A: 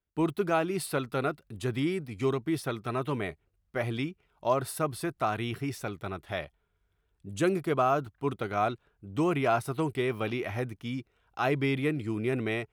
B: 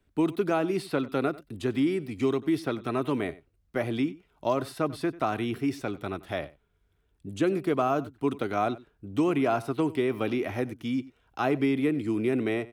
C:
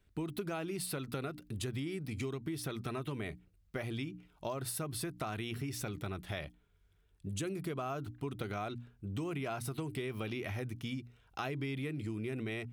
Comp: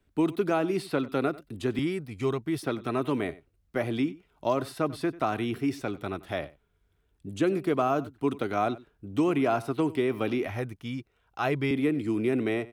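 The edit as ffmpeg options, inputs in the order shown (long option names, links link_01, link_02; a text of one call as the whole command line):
ffmpeg -i take0.wav -i take1.wav -filter_complex "[0:a]asplit=2[link_01][link_02];[1:a]asplit=3[link_03][link_04][link_05];[link_03]atrim=end=1.792[link_06];[link_01]atrim=start=1.788:end=2.632[link_07];[link_04]atrim=start=2.628:end=10.472[link_08];[link_02]atrim=start=10.468:end=11.712[link_09];[link_05]atrim=start=11.708[link_10];[link_06][link_07]acrossfade=duration=0.004:curve1=hsin:curve2=hsin[link_11];[link_11][link_08]acrossfade=duration=0.004:curve1=hsin:curve2=hsin[link_12];[link_12][link_09]acrossfade=duration=0.004:curve1=hsin:curve2=hsin[link_13];[link_13][link_10]acrossfade=duration=0.004:curve1=hsin:curve2=hsin" out.wav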